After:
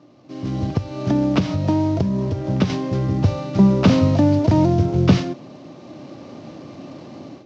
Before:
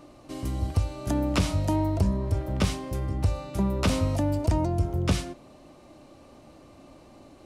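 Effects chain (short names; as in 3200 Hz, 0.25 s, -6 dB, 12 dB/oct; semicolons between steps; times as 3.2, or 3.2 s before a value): CVSD 32 kbps; AGC gain up to 14.5 dB; low shelf 400 Hz +10 dB; 0.65–2.7 compressor, threshold -6 dBFS, peak gain reduction 9 dB; HPF 120 Hz 24 dB/oct; gain -5.5 dB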